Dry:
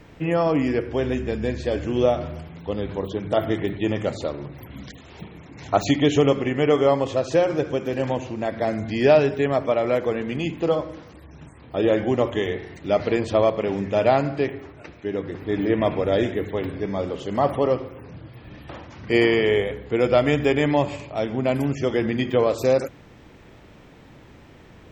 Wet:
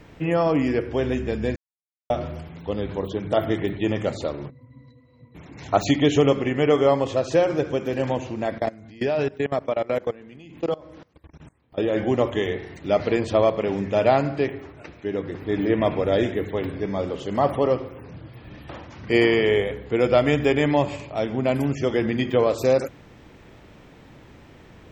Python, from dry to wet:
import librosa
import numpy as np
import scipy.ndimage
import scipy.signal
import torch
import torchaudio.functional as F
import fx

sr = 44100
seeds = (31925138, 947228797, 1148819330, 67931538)

y = fx.octave_resonator(x, sr, note='B', decay_s=0.15, at=(4.49, 5.34), fade=0.02)
y = fx.level_steps(y, sr, step_db=22, at=(8.58, 11.96))
y = fx.edit(y, sr, fx.silence(start_s=1.56, length_s=0.54), tone=tone)